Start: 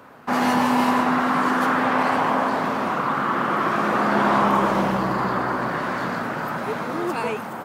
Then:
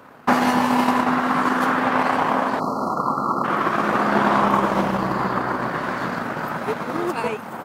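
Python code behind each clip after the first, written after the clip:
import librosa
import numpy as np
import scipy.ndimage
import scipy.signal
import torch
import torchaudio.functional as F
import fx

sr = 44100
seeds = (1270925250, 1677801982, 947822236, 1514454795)

y = fx.transient(x, sr, attack_db=9, sustain_db=-6)
y = fx.spec_erase(y, sr, start_s=2.6, length_s=0.84, low_hz=1400.0, high_hz=4000.0)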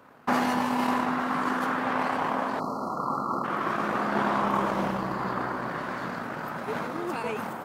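y = fx.sustainer(x, sr, db_per_s=23.0)
y = y * 10.0 ** (-8.5 / 20.0)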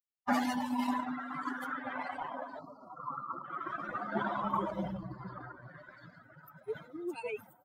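y = fx.bin_expand(x, sr, power=3.0)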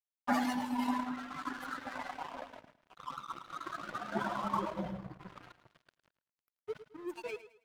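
y = np.sign(x) * np.maximum(np.abs(x) - 10.0 ** (-45.5 / 20.0), 0.0)
y = fx.echo_feedback(y, sr, ms=108, feedback_pct=32, wet_db=-14.0)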